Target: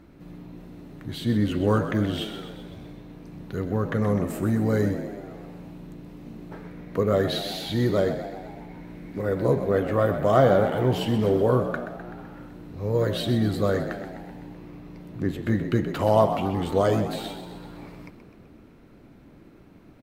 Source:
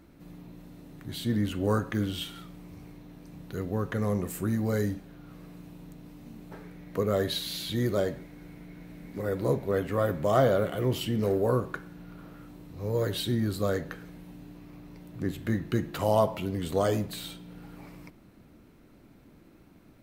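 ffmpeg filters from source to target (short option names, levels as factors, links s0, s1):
-filter_complex "[0:a]highshelf=f=5400:g=-10,asplit=8[s0][s1][s2][s3][s4][s5][s6][s7];[s1]adelay=127,afreqshift=57,volume=0.299[s8];[s2]adelay=254,afreqshift=114,volume=0.176[s9];[s3]adelay=381,afreqshift=171,volume=0.104[s10];[s4]adelay=508,afreqshift=228,volume=0.0617[s11];[s5]adelay=635,afreqshift=285,volume=0.0363[s12];[s6]adelay=762,afreqshift=342,volume=0.0214[s13];[s7]adelay=889,afreqshift=399,volume=0.0126[s14];[s0][s8][s9][s10][s11][s12][s13][s14]amix=inputs=8:normalize=0,volume=1.68"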